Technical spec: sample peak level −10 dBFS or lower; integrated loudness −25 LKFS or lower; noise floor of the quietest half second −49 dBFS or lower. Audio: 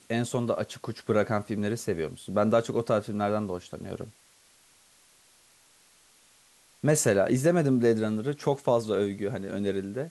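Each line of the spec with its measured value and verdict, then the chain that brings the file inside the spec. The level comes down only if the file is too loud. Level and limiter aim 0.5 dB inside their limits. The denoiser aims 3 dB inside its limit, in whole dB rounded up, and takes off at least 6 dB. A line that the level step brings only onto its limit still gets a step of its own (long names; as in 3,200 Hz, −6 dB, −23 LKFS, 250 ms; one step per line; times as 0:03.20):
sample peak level −10.5 dBFS: in spec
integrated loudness −27.5 LKFS: in spec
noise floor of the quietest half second −60 dBFS: in spec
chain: no processing needed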